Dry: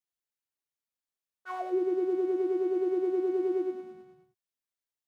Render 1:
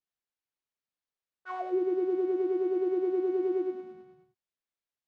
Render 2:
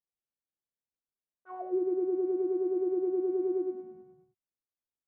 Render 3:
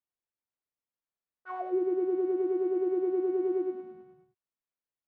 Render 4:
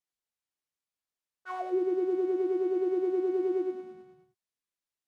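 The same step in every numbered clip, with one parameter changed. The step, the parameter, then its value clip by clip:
Bessel low-pass, frequency: 4200, 580, 1600, 11000 Hz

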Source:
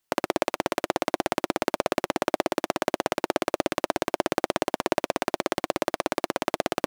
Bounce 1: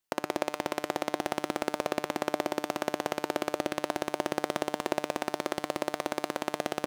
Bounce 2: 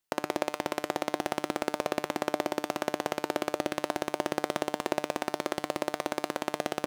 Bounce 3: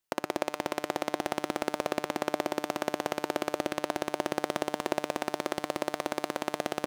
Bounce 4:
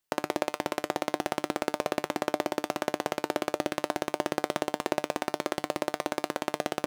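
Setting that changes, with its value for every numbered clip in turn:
resonator, decay: 0.99, 0.44, 2.1, 0.16 s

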